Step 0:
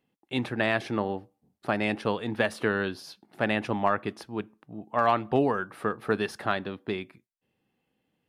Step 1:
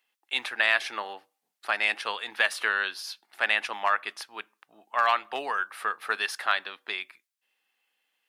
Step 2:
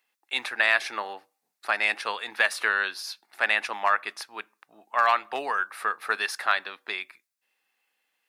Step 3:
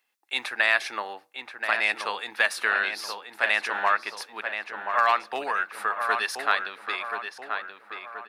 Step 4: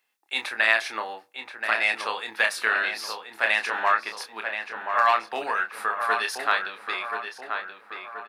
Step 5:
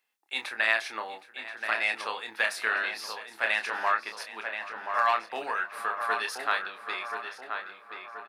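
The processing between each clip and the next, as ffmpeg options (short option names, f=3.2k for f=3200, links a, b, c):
-af "highpass=1.4k,volume=7.5dB"
-af "equalizer=f=3.1k:w=5.1:g=-6.5,volume=2dB"
-filter_complex "[0:a]asplit=2[a][b];[b]adelay=1029,lowpass=f=2.5k:p=1,volume=-6dB,asplit=2[c][d];[d]adelay=1029,lowpass=f=2.5k:p=1,volume=0.5,asplit=2[e][f];[f]adelay=1029,lowpass=f=2.5k:p=1,volume=0.5,asplit=2[g][h];[h]adelay=1029,lowpass=f=2.5k:p=1,volume=0.5,asplit=2[i][j];[j]adelay=1029,lowpass=f=2.5k:p=1,volume=0.5,asplit=2[k][l];[l]adelay=1029,lowpass=f=2.5k:p=1,volume=0.5[m];[a][c][e][g][i][k][m]amix=inputs=7:normalize=0"
-filter_complex "[0:a]asplit=2[a][b];[b]adelay=27,volume=-6.5dB[c];[a][c]amix=inputs=2:normalize=0"
-af "aecho=1:1:768:0.133,volume=-4.5dB"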